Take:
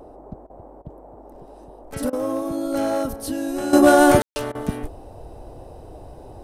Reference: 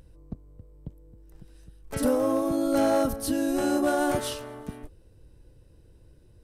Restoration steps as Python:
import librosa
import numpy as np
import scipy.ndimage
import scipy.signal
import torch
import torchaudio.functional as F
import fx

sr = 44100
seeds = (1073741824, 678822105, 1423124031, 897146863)

y = fx.fix_ambience(x, sr, seeds[0], print_start_s=0.36, print_end_s=0.86, start_s=4.22, end_s=4.36)
y = fx.fix_interpolate(y, sr, at_s=(0.47, 0.82, 2.1, 4.52), length_ms=28.0)
y = fx.noise_reduce(y, sr, print_start_s=0.36, print_end_s=0.86, reduce_db=10.0)
y = fx.gain(y, sr, db=fx.steps((0.0, 0.0), (3.73, -12.0)))